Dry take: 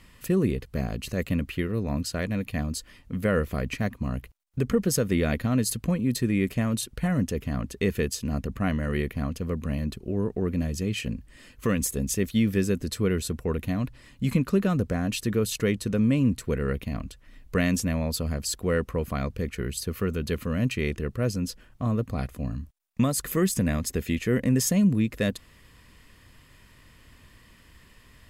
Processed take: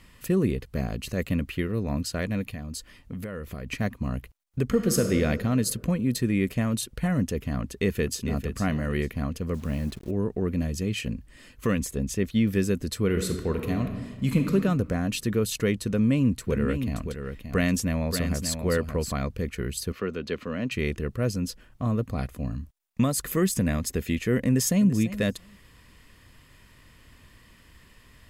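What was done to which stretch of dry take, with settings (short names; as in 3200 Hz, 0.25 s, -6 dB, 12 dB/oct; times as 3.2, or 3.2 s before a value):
2.47–3.7 compressor 12:1, threshold -30 dBFS
4.68–5.09 reverb throw, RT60 2.3 s, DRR 4 dB
7.61–8.43 echo throw 0.45 s, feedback 20%, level -9.5 dB
9.54–10.11 level-crossing sampler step -46.5 dBFS
11.79–12.47 LPF 4000 Hz 6 dB/oct
13.04–14.53 reverb throw, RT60 1.4 s, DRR 4.5 dB
15.89–19.14 echo 0.577 s -7.5 dB
19.92–20.72 three-band isolator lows -13 dB, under 210 Hz, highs -21 dB, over 5900 Hz
24.46–24.88 echo throw 0.34 s, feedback 10%, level -14.5 dB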